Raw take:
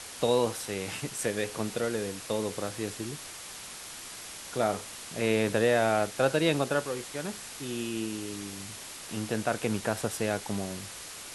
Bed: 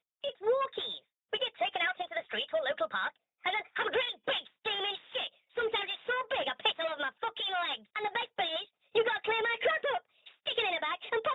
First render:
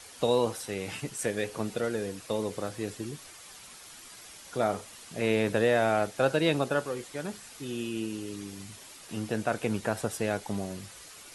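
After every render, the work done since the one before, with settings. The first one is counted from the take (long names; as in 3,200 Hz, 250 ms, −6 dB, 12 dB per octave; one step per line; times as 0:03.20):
broadband denoise 8 dB, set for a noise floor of −43 dBFS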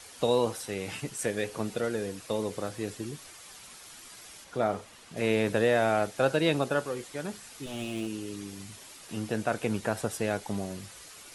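0:04.44–0:05.17: high-shelf EQ 4,600 Hz −9 dB
0:07.66–0:08.07: lower of the sound and its delayed copy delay 9.4 ms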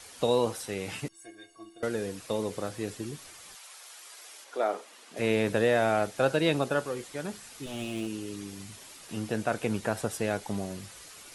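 0:01.08–0:01.83: stiff-string resonator 330 Hz, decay 0.31 s, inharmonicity 0.03
0:03.54–0:05.18: high-pass filter 590 Hz → 240 Hz 24 dB per octave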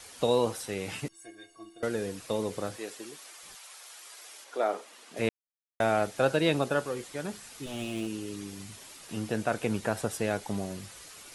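0:02.76–0:03.43: high-pass filter 440 Hz
0:05.29–0:05.80: silence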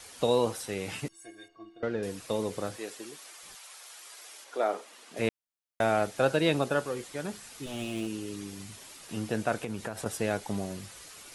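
0:01.48–0:02.03: high-frequency loss of the air 230 metres
0:09.57–0:10.06: downward compressor 5 to 1, threshold −31 dBFS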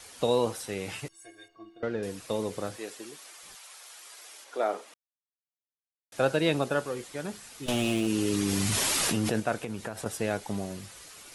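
0:00.92–0:01.54: parametric band 230 Hz −11.5 dB
0:04.94–0:06.12: silence
0:07.68–0:09.40: envelope flattener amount 100%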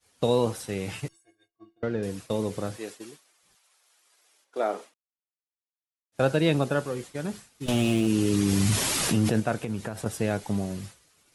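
parametric band 120 Hz +7.5 dB 2.5 octaves
downward expander −37 dBFS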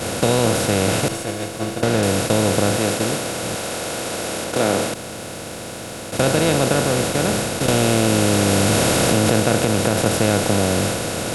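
compressor on every frequency bin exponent 0.2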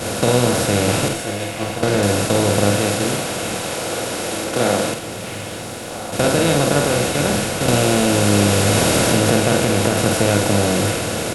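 double-tracking delay 49 ms −5 dB
echo through a band-pass that steps 672 ms, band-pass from 2,500 Hz, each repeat −1.4 octaves, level −6.5 dB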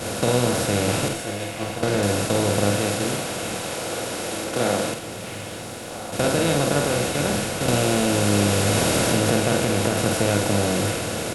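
level −4.5 dB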